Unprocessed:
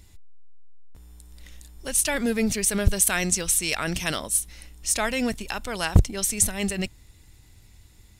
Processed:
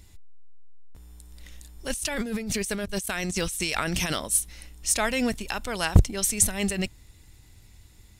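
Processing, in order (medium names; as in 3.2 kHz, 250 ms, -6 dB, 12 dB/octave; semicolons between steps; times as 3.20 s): 1.90–4.13 s: compressor with a negative ratio -30 dBFS, ratio -1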